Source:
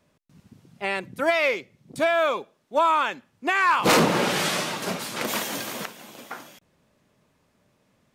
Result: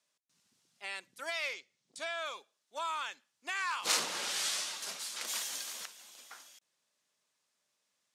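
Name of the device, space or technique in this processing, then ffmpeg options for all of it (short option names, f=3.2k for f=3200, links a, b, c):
piezo pickup straight into a mixer: -filter_complex "[0:a]lowpass=7.5k,aderivative,asettb=1/sr,asplit=3[a][b][c];[a]atrim=end=1.534[d];[b]atrim=start=1.53:end=2.26,asetpts=PTS-STARTPTS,afade=t=in:d=0.004:c=qsin,afade=t=out:st=0.726:d=0.004:c=qsin,lowpass=8.5k[e];[c]atrim=start=2.256[f];[d][e]acrossfade=d=0.004:c1=hsin:c2=qsin[g];[g][f]acrossfade=d=0.004:c1=qsin:c2=hsin,equalizer=f=2.4k:t=o:w=0.69:g=-3"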